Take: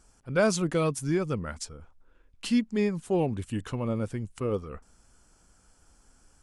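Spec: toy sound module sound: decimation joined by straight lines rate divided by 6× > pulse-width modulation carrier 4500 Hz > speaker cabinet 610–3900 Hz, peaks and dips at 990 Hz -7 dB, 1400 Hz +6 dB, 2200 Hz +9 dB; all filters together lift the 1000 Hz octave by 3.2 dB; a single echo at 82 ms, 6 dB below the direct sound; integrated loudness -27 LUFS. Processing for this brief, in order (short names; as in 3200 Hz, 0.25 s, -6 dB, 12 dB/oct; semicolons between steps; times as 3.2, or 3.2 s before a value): bell 1000 Hz +4 dB; echo 82 ms -6 dB; decimation joined by straight lines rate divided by 6×; pulse-width modulation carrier 4500 Hz; speaker cabinet 610–3900 Hz, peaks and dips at 990 Hz -7 dB, 1400 Hz +6 dB, 2200 Hz +9 dB; gain +6.5 dB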